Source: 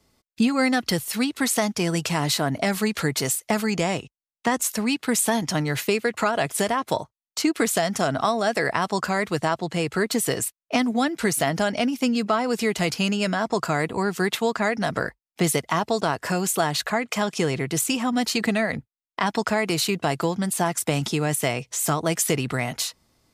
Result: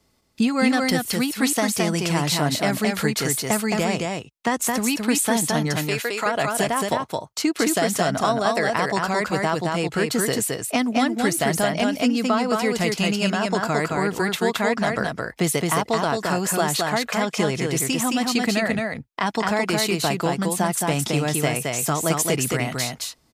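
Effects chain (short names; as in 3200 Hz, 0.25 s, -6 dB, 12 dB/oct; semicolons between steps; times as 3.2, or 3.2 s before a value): 5.78–6.26 HPF 640 Hz 6 dB/oct; echo 0.218 s -3 dB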